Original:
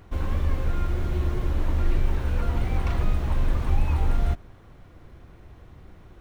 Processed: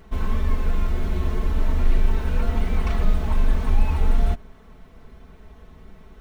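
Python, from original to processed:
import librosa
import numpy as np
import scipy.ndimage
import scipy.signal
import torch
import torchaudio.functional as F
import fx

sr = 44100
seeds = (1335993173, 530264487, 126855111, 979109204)

y = x + 0.9 * np.pad(x, (int(4.6 * sr / 1000.0), 0))[:len(x)]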